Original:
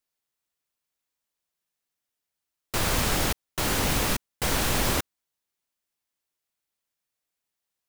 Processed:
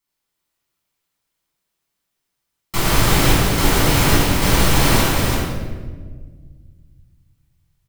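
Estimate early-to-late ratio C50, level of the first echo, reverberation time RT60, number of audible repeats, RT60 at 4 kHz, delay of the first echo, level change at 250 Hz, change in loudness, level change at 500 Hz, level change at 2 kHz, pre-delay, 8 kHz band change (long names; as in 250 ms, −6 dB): −3.0 dB, −4.0 dB, 1.5 s, 1, 0.95 s, 338 ms, +12.5 dB, +9.0 dB, +10.5 dB, +9.5 dB, 6 ms, +7.5 dB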